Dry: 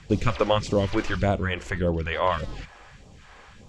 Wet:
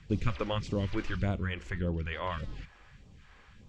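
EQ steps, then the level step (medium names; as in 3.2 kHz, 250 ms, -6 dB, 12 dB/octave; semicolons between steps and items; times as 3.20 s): peaking EQ 680 Hz -9.5 dB 1.8 oct; treble shelf 4.8 kHz -12 dB; -4.5 dB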